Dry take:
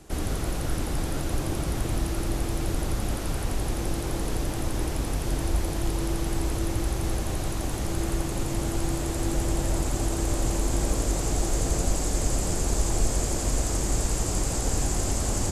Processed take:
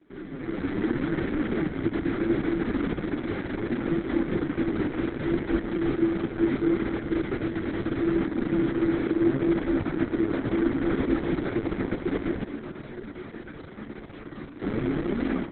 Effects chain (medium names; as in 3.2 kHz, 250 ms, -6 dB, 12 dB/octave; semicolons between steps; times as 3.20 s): comb filter that takes the minimum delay 0.32 ms; three-band isolator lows -24 dB, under 200 Hz, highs -17 dB, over 2.7 kHz; level rider gain up to 13 dB; flange 0.72 Hz, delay 3.3 ms, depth 7.8 ms, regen +14%; tape spacing loss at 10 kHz 30 dB; 12.44–14.62 s: inharmonic resonator 71 Hz, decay 0.5 s, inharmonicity 0.002; thinning echo 421 ms, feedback 60%, high-pass 450 Hz, level -15.5 dB; reverberation RT60 0.45 s, pre-delay 3 ms, DRR 15 dB; trim -2 dB; Opus 6 kbps 48 kHz